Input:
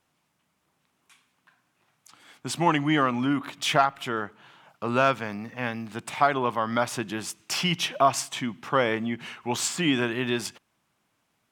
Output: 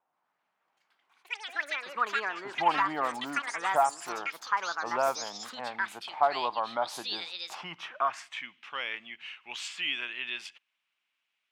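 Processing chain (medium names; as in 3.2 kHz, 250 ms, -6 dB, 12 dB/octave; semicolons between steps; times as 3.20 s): band-pass sweep 820 Hz -> 2.7 kHz, 7.51–8.56 s; ever faster or slower copies 128 ms, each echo +6 st, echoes 3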